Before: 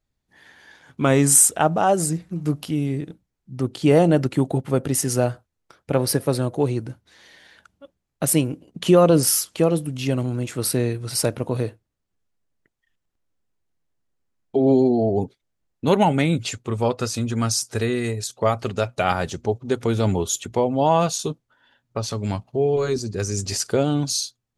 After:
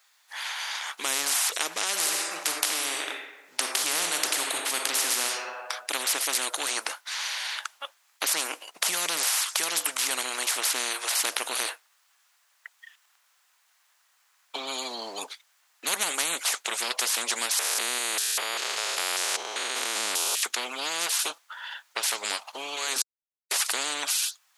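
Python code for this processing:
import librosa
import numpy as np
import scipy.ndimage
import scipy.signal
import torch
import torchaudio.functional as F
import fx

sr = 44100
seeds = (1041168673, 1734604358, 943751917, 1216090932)

y = fx.reverb_throw(x, sr, start_s=1.91, length_s=3.33, rt60_s=1.1, drr_db=5.0)
y = fx.spec_steps(y, sr, hold_ms=200, at=(17.59, 20.43))
y = fx.edit(y, sr, fx.silence(start_s=23.02, length_s=0.49), tone=tone)
y = scipy.signal.sosfilt(scipy.signal.butter(4, 960.0, 'highpass', fs=sr, output='sos'), y)
y = fx.spectral_comp(y, sr, ratio=10.0)
y = y * librosa.db_to_amplitude(-2.5)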